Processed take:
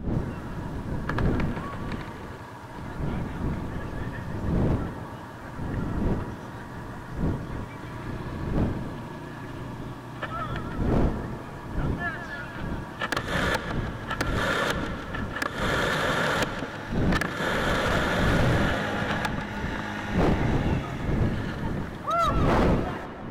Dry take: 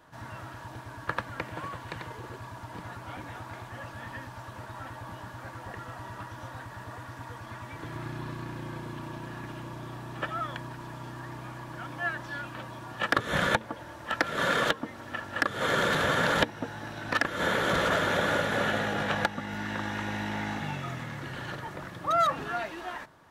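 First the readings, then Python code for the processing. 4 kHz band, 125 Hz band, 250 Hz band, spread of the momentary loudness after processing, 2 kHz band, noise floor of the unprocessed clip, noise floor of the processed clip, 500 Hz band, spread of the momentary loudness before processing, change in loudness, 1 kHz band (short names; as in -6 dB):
+0.5 dB, +9.5 dB, +8.5 dB, 13 LU, 0.0 dB, -45 dBFS, -39 dBFS, +3.0 dB, 16 LU, +3.0 dB, +1.0 dB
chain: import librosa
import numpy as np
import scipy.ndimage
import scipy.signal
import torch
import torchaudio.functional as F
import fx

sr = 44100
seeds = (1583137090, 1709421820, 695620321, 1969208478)

y = fx.dmg_wind(x, sr, seeds[0], corner_hz=210.0, level_db=-27.0)
y = 10.0 ** (-16.0 / 20.0) * (np.abs((y / 10.0 ** (-16.0 / 20.0) + 3.0) % 4.0 - 2.0) - 1.0)
y = fx.echo_tape(y, sr, ms=161, feedback_pct=79, wet_db=-8.0, lp_hz=6000.0, drive_db=22.0, wow_cents=36)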